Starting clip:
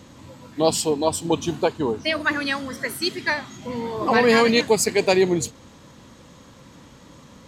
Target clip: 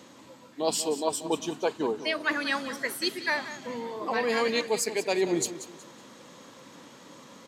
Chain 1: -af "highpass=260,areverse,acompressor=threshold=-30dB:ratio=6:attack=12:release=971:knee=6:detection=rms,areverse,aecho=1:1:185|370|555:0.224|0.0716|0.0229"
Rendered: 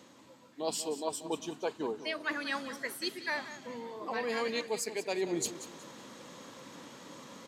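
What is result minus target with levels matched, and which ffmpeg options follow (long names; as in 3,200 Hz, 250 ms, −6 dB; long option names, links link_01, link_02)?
downward compressor: peak gain reduction +7 dB
-af "highpass=260,areverse,acompressor=threshold=-21.5dB:ratio=6:attack=12:release=971:knee=6:detection=rms,areverse,aecho=1:1:185|370|555:0.224|0.0716|0.0229"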